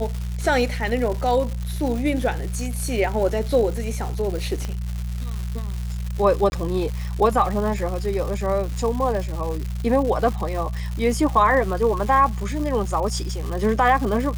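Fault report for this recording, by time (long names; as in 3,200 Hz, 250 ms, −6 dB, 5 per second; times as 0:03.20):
surface crackle 290 per second −28 dBFS
mains hum 60 Hz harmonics 3 −27 dBFS
0:04.65: click −16 dBFS
0:06.50–0:06.52: drop-out 21 ms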